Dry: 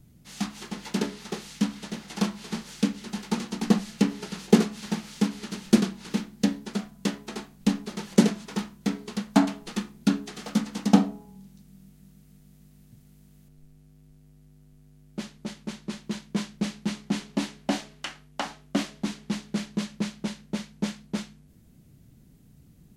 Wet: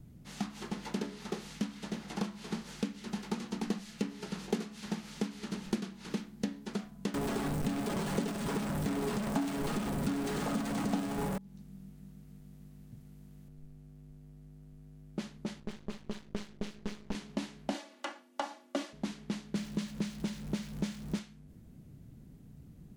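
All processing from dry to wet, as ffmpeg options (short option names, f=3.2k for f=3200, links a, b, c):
-filter_complex "[0:a]asettb=1/sr,asplit=3[a][b][c];[a]atrim=end=7.144[d];[b]atrim=start=7.14:end=11.38,asetpts=PTS-STARTPTS,afade=t=in:d=0.004:c=qsin,afade=t=out:st=4.236:d=0.004:c=qsin,aeval=exprs='val(0)+0.5*0.112*sgn(val(0))':c=same,equalizer=f=8.4k:t=o:w=0.32:g=6.5,aecho=1:1:7.2:0.38,atrim=end_sample=186984[e];[c]atrim=start=11.376[f];[d][e]acrossfade=d=0.004:c1=hsin:c2=qsin[g];[g][f]acrossfade=d=0.004:c1=qsin:c2=hsin,asettb=1/sr,asplit=3[h][i][j];[h]atrim=end=15.604[k];[i]atrim=start=15.6:end=17.15,asetpts=PTS-STARTPTS,afade=t=in:d=0.004:c=qsin,afade=t=out:st=1.546:d=0.004:c=qsin,highshelf=f=9.9k:g=-12,aeval=exprs='max(val(0),0)':c=same[l];[j]atrim=start=17.146[m];[k][l]acrossfade=d=0.004:c1=hsin:c2=qsin[n];[n][m]acrossfade=d=0.004:c1=qsin:c2=hsin,asettb=1/sr,asplit=3[o][p][q];[o]atrim=end=17.744[r];[p]atrim=start=17.74:end=18.93,asetpts=PTS-STARTPTS,afade=t=in:d=0.004:c=qsin,afade=t=out:st=1.186:d=0.004:c=qsin,highpass=f=310:w=0.5412,highpass=f=310:w=1.3066,aecho=1:1:3.5:0.97,atrim=end_sample=52479[s];[q]atrim=start=18.926[t];[r][s]acrossfade=d=0.004:c1=hsin:c2=qsin[u];[u][t]acrossfade=d=0.004:c1=qsin:c2=hsin,asettb=1/sr,asplit=3[v][w][x];[v]atrim=end=19.554[y];[w]atrim=start=19.55:end=21.19,asetpts=PTS-STARTPTS,afade=t=in:d=0.004:c=qsin,afade=t=out:st=1.636:d=0.004:c=qsin,aeval=exprs='val(0)+0.5*0.00794*sgn(val(0))':c=same,bass=f=250:g=7,treble=f=4k:g=3[z];[x]atrim=start=21.186[aa];[y][z]acrossfade=d=0.004:c1=hsin:c2=qsin[ab];[ab][aa]acrossfade=d=0.004:c1=qsin:c2=hsin,highshelf=f=2.1k:g=-9,acrossover=split=1500|3300[ac][ad][ae];[ac]acompressor=threshold=-36dB:ratio=4[af];[ad]acompressor=threshold=-54dB:ratio=4[ag];[ae]acompressor=threshold=-51dB:ratio=4[ah];[af][ag][ah]amix=inputs=3:normalize=0,volume=2dB"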